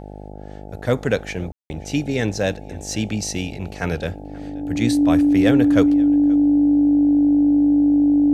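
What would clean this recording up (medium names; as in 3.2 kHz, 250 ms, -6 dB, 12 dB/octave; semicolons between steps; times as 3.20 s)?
de-hum 50.5 Hz, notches 17; band-stop 290 Hz, Q 30; room tone fill 1.52–1.70 s; inverse comb 529 ms -23.5 dB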